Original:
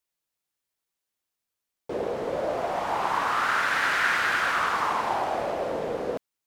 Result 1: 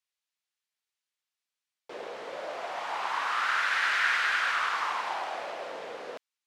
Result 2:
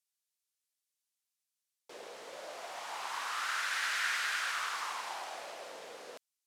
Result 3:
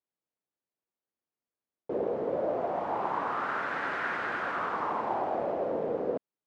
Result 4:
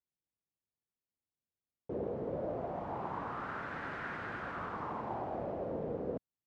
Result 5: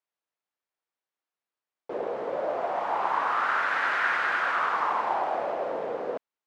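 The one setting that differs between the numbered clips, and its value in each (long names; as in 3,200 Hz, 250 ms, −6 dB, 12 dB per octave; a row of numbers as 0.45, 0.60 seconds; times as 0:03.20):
resonant band-pass, frequency: 3,000, 7,700, 330, 110, 890 Hertz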